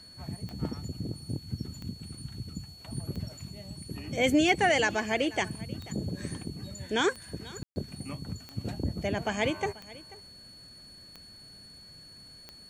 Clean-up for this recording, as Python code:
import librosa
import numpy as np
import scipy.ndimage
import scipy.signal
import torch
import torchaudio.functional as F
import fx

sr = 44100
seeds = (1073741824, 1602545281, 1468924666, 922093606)

y = fx.fix_declick_ar(x, sr, threshold=10.0)
y = fx.notch(y, sr, hz=4400.0, q=30.0)
y = fx.fix_ambience(y, sr, seeds[0], print_start_s=10.33, print_end_s=10.83, start_s=7.63, end_s=7.76)
y = fx.fix_echo_inverse(y, sr, delay_ms=487, level_db=-20.0)